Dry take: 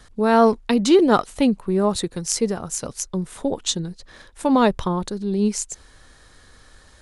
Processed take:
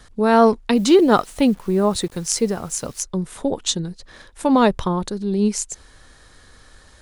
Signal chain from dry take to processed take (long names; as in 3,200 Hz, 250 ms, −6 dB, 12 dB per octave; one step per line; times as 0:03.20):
0:00.75–0:03.03: bit-depth reduction 8 bits, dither none
level +1.5 dB